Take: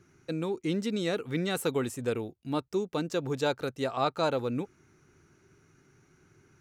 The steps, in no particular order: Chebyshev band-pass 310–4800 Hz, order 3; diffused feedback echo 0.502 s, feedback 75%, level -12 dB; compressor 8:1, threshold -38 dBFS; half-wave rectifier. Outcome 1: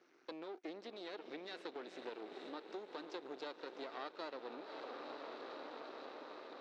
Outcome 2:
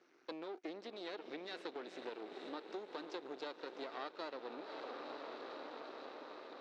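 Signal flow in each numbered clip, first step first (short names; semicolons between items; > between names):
diffused feedback echo > compressor > half-wave rectifier > Chebyshev band-pass; diffused feedback echo > half-wave rectifier > compressor > Chebyshev band-pass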